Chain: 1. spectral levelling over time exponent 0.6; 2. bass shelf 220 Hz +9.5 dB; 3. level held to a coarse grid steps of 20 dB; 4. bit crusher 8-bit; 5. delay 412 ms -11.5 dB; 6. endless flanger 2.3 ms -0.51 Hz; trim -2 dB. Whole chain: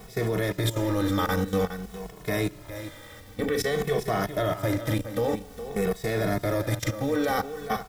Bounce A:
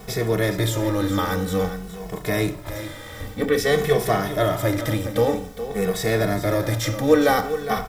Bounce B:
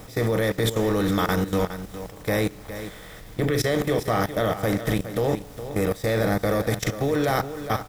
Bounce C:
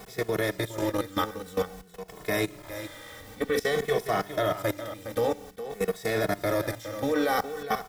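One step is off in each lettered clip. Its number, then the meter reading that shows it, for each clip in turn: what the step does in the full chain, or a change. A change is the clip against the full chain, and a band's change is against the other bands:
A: 3, crest factor change +2.5 dB; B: 6, loudness change +3.0 LU; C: 2, 125 Hz band -7.5 dB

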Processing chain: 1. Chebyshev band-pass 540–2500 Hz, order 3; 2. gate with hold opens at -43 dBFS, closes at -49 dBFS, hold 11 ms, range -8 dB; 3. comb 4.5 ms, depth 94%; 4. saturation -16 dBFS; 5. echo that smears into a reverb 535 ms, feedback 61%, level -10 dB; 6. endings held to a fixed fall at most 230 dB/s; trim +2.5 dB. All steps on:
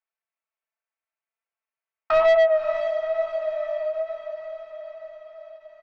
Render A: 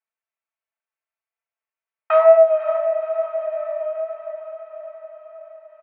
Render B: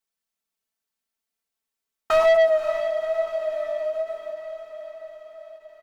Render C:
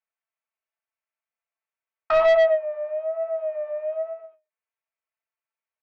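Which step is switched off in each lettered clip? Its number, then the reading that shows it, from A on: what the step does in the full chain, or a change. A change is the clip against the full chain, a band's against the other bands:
4, distortion -9 dB; 1, 4 kHz band +2.0 dB; 5, momentary loudness spread change -8 LU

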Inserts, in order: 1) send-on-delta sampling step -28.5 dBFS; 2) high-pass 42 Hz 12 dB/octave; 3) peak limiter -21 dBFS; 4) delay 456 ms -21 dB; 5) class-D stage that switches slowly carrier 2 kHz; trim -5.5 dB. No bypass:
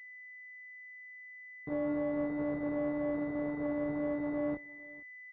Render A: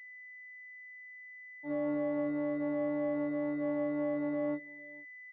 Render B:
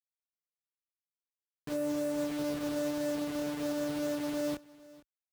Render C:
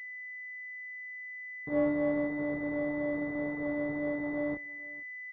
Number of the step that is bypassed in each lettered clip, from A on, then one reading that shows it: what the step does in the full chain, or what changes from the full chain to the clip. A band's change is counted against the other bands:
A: 1, distortion -8 dB; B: 5, 2 kHz band -4.0 dB; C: 3, crest factor change +4.5 dB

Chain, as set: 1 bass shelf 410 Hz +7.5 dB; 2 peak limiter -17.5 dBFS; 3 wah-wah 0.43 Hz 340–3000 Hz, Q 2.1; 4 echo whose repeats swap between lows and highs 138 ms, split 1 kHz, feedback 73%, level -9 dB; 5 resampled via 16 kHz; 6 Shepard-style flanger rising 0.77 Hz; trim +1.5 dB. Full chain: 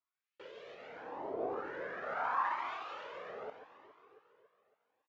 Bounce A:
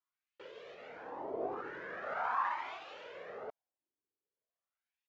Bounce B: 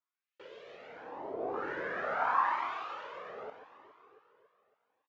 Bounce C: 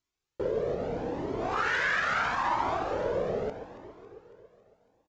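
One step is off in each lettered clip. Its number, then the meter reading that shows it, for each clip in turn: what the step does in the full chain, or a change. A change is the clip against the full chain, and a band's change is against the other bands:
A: 4, momentary loudness spread change -2 LU; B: 2, mean gain reduction 2.0 dB; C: 3, 1 kHz band -6.5 dB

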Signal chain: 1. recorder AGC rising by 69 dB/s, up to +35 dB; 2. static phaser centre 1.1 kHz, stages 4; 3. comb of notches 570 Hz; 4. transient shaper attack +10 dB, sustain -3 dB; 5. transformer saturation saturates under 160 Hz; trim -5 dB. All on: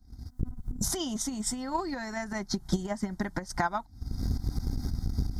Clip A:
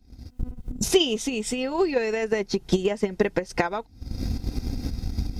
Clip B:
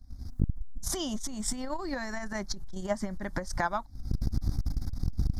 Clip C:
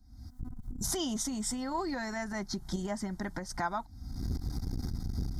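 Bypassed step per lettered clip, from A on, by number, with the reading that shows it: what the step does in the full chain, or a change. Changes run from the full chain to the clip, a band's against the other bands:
2, 500 Hz band +11.0 dB; 3, 500 Hz band +2.5 dB; 4, 125 Hz band -2.0 dB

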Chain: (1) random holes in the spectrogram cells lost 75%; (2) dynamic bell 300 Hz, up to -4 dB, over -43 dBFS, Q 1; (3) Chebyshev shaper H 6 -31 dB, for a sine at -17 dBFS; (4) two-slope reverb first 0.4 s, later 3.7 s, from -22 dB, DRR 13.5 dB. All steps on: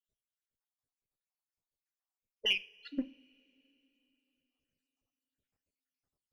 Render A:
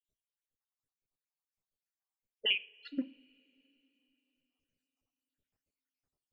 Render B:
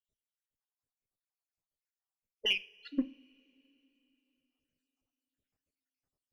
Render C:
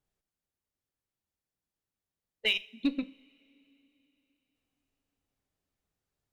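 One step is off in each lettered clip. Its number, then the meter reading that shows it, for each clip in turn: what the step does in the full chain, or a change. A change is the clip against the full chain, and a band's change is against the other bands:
3, 1 kHz band -1.5 dB; 2, momentary loudness spread change -3 LU; 1, 8 kHz band -5.0 dB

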